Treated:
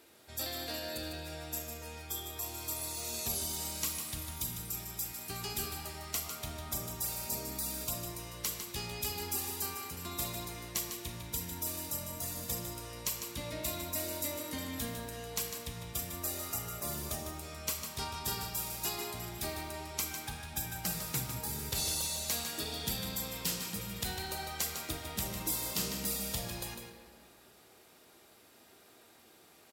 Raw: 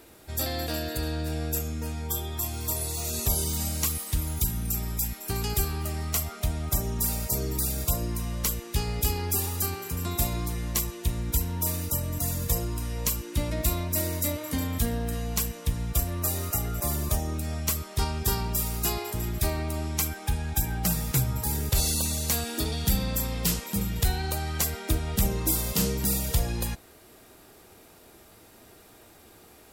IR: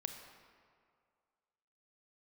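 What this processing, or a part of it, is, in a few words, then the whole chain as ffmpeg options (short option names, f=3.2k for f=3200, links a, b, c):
PA in a hall: -filter_complex "[0:a]highpass=f=200:p=1,equalizer=f=3.8k:t=o:w=2:g=4,aecho=1:1:152:0.398[a];[1:a]atrim=start_sample=2205[b];[a][b]afir=irnorm=-1:irlink=0,volume=-6.5dB"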